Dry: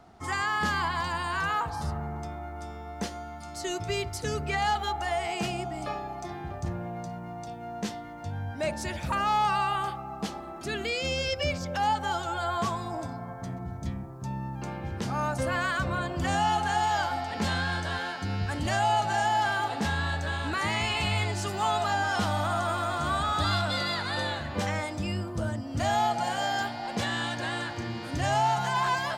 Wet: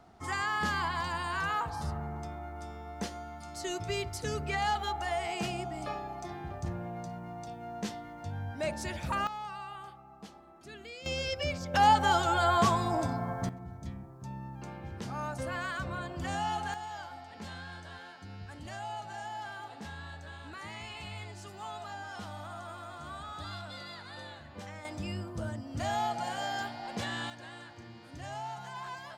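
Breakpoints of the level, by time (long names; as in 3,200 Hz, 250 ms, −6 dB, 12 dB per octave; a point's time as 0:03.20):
−3.5 dB
from 0:09.27 −15.5 dB
from 0:11.06 −4.5 dB
from 0:11.74 +4 dB
from 0:13.49 −7.5 dB
from 0:16.74 −15 dB
from 0:24.85 −6 dB
from 0:27.30 −15 dB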